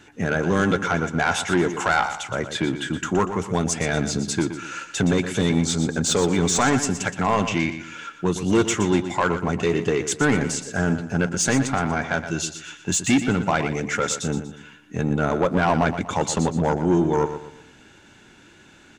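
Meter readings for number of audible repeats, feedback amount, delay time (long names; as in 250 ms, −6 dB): 3, 36%, 120 ms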